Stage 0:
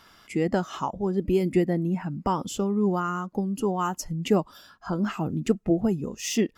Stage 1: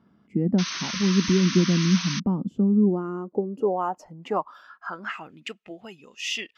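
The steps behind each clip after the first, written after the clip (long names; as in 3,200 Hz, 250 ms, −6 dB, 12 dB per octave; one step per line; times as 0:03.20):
band-pass filter sweep 200 Hz → 2,800 Hz, 0:02.57–0:05.54
sound drawn into the spectrogram noise, 0:00.58–0:02.20, 940–6,400 Hz −40 dBFS
level +8 dB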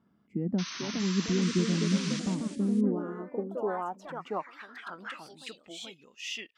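delay with pitch and tempo change per echo 501 ms, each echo +3 semitones, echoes 3, each echo −6 dB
level −8 dB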